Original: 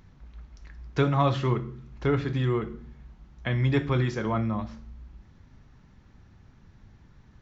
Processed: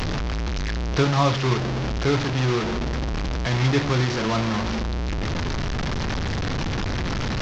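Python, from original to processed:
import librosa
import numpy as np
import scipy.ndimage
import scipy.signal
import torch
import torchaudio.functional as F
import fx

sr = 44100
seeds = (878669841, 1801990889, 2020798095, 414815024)

y = fx.delta_mod(x, sr, bps=32000, step_db=-22.0)
y = F.gain(torch.from_numpy(y), 3.0).numpy()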